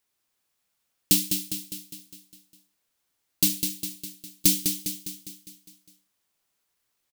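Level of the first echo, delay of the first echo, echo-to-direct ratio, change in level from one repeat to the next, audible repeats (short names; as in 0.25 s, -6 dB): -6.5 dB, 0.203 s, -5.0 dB, -5.0 dB, 6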